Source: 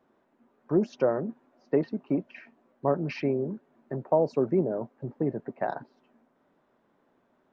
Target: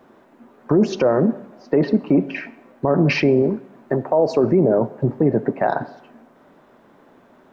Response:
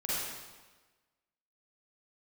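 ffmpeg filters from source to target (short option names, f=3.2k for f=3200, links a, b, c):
-filter_complex "[0:a]asettb=1/sr,asplit=3[a][b][c];[a]atrim=end=3.424[d];[b]atrim=start=3.42:end=4.44,asetpts=PTS-STARTPTS,afade=t=in:d=0.004:c=qsin,afade=t=out:st=1.016:d=0.004:c=qsin,equalizer=f=150:t=o:w=1.9:g=-7[e];[c]atrim=start=4.436[f];[d][e]acrossfade=d=0.004:c1=hsin:c2=qsin[g];[g][f]acrossfade=d=0.004:c1=qsin:c2=hsin,asplit=2[h][i];[1:a]atrim=start_sample=2205,asetrate=74970,aresample=44100[j];[i][j]afir=irnorm=-1:irlink=0,volume=-18dB[k];[h][k]amix=inputs=2:normalize=0,alimiter=level_in=23dB:limit=-1dB:release=50:level=0:latency=1,volume=-6.5dB"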